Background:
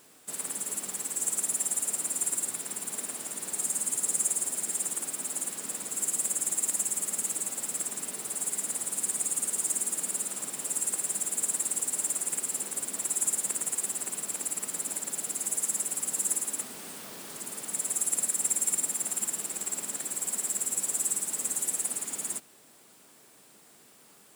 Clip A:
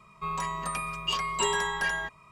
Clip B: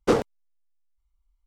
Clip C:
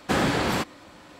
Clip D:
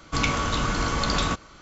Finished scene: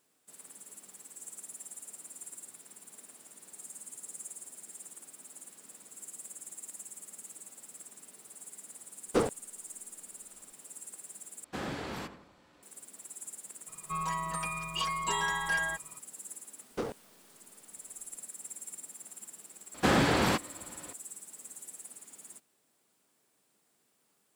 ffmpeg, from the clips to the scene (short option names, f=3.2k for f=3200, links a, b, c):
-filter_complex "[2:a]asplit=2[a][b];[3:a]asplit=2[c][d];[0:a]volume=-16.5dB[e];[c]asplit=2[f][g];[g]adelay=86,lowpass=f=2k:p=1,volume=-10dB,asplit=2[h][i];[i]adelay=86,lowpass=f=2k:p=1,volume=0.49,asplit=2[j][k];[k]adelay=86,lowpass=f=2k:p=1,volume=0.49,asplit=2[l][m];[m]adelay=86,lowpass=f=2k:p=1,volume=0.49,asplit=2[n][o];[o]adelay=86,lowpass=f=2k:p=1,volume=0.49[p];[f][h][j][l][n][p]amix=inputs=6:normalize=0[q];[1:a]aecho=1:1:6.2:0.62[r];[b]alimiter=limit=-15.5dB:level=0:latency=1:release=245[s];[e]asplit=2[t][u];[t]atrim=end=11.444[v];[q]atrim=end=1.19,asetpts=PTS-STARTPTS,volume=-15dB[w];[u]atrim=start=12.626[x];[a]atrim=end=1.46,asetpts=PTS-STARTPTS,volume=-7dB,afade=t=in:d=0.004:c=hsin,afade=t=out:st=1.456:d=0.004:c=hsin,adelay=9070[y];[r]atrim=end=2.31,asetpts=PTS-STARTPTS,volume=-5dB,afade=t=in:d=0.004:c=hsin,afade=t=out:st=2.306:d=0.004:c=hsin,adelay=13680[z];[s]atrim=end=1.46,asetpts=PTS-STARTPTS,volume=-8.5dB,afade=t=in:d=0.004:c=hsin,afade=t=out:st=1.456:d=0.004:c=hsin,adelay=16700[aa];[d]atrim=end=1.19,asetpts=PTS-STARTPTS,volume=-2dB,afade=t=in:d=0.004:c=hsin,afade=t=out:st=1.186:d=0.004:c=hsin,adelay=19740[ab];[v][w]acrossfade=d=0.004:c1=hsin:c2=hsin[ac];[ac][x]acrossfade=d=0.004:c1=hsin:c2=hsin[ad];[ad][y][z][aa][ab]amix=inputs=5:normalize=0"